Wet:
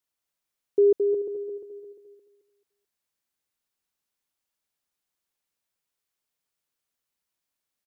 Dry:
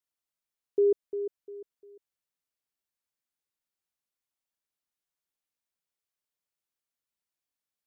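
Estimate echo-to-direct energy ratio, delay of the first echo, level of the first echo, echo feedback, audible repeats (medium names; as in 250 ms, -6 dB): -5.0 dB, 218 ms, -5.5 dB, 32%, 3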